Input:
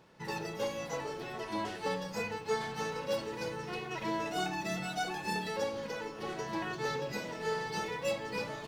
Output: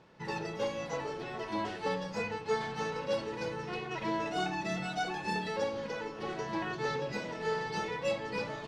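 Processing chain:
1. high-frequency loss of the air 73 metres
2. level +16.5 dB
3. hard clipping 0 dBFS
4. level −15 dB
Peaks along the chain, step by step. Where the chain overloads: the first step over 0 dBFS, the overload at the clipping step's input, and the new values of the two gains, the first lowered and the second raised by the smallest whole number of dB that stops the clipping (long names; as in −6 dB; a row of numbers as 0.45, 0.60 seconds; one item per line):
−21.5, −5.0, −5.0, −20.0 dBFS
no step passes full scale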